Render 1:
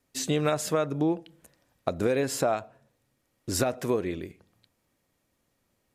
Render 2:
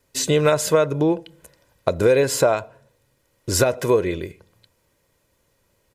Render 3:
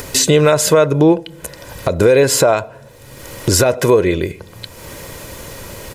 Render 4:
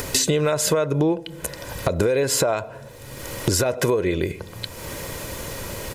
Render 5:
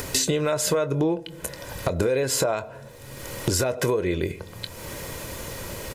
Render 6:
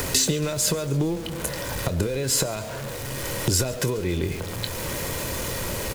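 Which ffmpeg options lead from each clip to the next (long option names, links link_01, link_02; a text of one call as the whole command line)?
ffmpeg -i in.wav -af "aecho=1:1:2:0.48,volume=7.5dB" out.wav
ffmpeg -i in.wav -af "acompressor=mode=upward:threshold=-19dB:ratio=2.5,alimiter=level_in=10dB:limit=-1dB:release=50:level=0:latency=1,volume=-1.5dB" out.wav
ffmpeg -i in.wav -af "acompressor=threshold=-18dB:ratio=5" out.wav
ffmpeg -i in.wav -filter_complex "[0:a]asplit=2[link_01][link_02];[link_02]adelay=23,volume=-13dB[link_03];[link_01][link_03]amix=inputs=2:normalize=0,volume=-3dB" out.wav
ffmpeg -i in.wav -filter_complex "[0:a]aeval=exprs='val(0)+0.5*0.0282*sgn(val(0))':channel_layout=same,acrossover=split=260|3000[link_01][link_02][link_03];[link_02]acompressor=threshold=-30dB:ratio=6[link_04];[link_01][link_04][link_03]amix=inputs=3:normalize=0,asplit=6[link_05][link_06][link_07][link_08][link_09][link_10];[link_06]adelay=139,afreqshift=-120,volume=-19dB[link_11];[link_07]adelay=278,afreqshift=-240,volume=-23.7dB[link_12];[link_08]adelay=417,afreqshift=-360,volume=-28.5dB[link_13];[link_09]adelay=556,afreqshift=-480,volume=-33.2dB[link_14];[link_10]adelay=695,afreqshift=-600,volume=-37.9dB[link_15];[link_05][link_11][link_12][link_13][link_14][link_15]amix=inputs=6:normalize=0,volume=1.5dB" out.wav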